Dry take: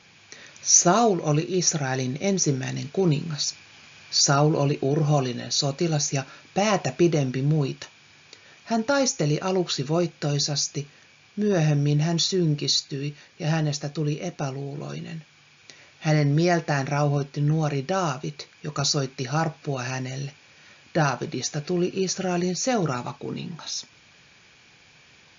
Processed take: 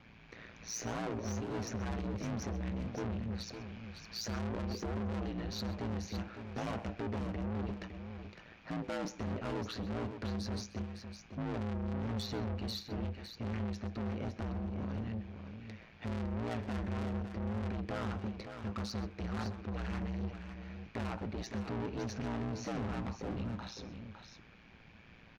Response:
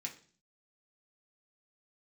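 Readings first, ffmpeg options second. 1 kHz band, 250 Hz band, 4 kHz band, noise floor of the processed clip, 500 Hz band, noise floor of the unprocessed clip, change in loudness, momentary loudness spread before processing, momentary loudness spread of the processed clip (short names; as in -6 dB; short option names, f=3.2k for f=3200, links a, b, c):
-15.5 dB, -12.0 dB, -19.0 dB, -58 dBFS, -16.5 dB, -55 dBFS, -15.5 dB, 12 LU, 10 LU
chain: -af "lowpass=2.3k,equalizer=f=67:w=0.35:g=9.5,alimiter=limit=-13.5dB:level=0:latency=1:release=387,asoftclip=type=tanh:threshold=-31.5dB,aeval=exprs='val(0)*sin(2*PI*57*n/s)':c=same,aecho=1:1:129|558:0.119|0.376,volume=-1.5dB"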